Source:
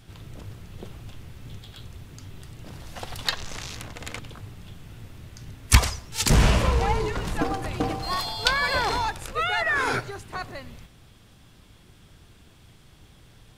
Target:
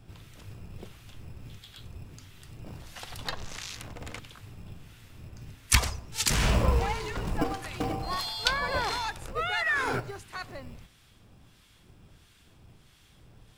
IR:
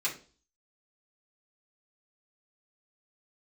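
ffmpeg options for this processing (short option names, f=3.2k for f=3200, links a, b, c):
-filter_complex "[0:a]acrossover=split=1200[a][b];[a]aeval=exprs='val(0)*(1-0.7/2+0.7/2*cos(2*PI*1.5*n/s))':c=same[c];[b]aeval=exprs='val(0)*(1-0.7/2-0.7/2*cos(2*PI*1.5*n/s))':c=same[d];[c][d]amix=inputs=2:normalize=0,acrossover=split=350[e][f];[e]acrusher=samples=17:mix=1:aa=0.000001[g];[g][f]amix=inputs=2:normalize=0,volume=-1dB"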